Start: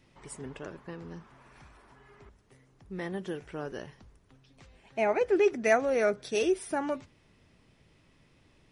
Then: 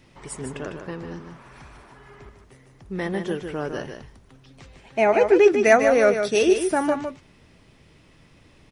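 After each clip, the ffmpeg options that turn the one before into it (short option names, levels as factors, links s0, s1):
-af "aecho=1:1:151:0.447,volume=2.66"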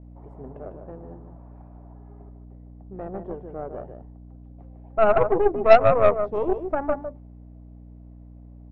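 -af "aeval=exprs='val(0)+0.0224*(sin(2*PI*60*n/s)+sin(2*PI*2*60*n/s)/2+sin(2*PI*3*60*n/s)/3+sin(2*PI*4*60*n/s)/4+sin(2*PI*5*60*n/s)/5)':c=same,lowpass=f=700:t=q:w=3.7,aeval=exprs='1.5*(cos(1*acos(clip(val(0)/1.5,-1,1)))-cos(1*PI/2))+0.188*(cos(3*acos(clip(val(0)/1.5,-1,1)))-cos(3*PI/2))+0.211*(cos(4*acos(clip(val(0)/1.5,-1,1)))-cos(4*PI/2))+0.0422*(cos(8*acos(clip(val(0)/1.5,-1,1)))-cos(8*PI/2))':c=same,volume=0.501"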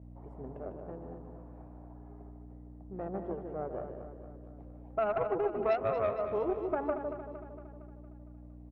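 -filter_complex "[0:a]highpass=48,acompressor=threshold=0.0562:ratio=4,asplit=2[s0][s1];[s1]aecho=0:1:230|460|690|920|1150|1380|1610:0.335|0.188|0.105|0.0588|0.0329|0.0184|0.0103[s2];[s0][s2]amix=inputs=2:normalize=0,volume=0.631"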